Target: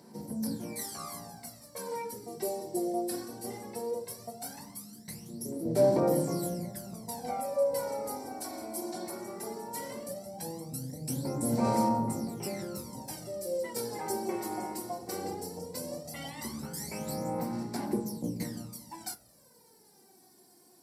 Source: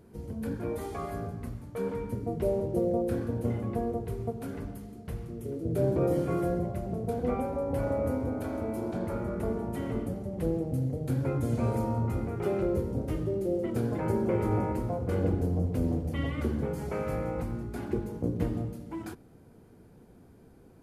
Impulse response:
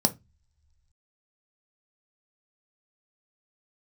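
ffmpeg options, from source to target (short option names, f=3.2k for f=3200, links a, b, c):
-filter_complex "[0:a]aderivative,aphaser=in_gain=1:out_gain=1:delay=2.8:decay=0.71:speed=0.17:type=sinusoidal[a];[1:a]atrim=start_sample=2205[b];[a][b]afir=irnorm=-1:irlink=0,volume=1.5dB"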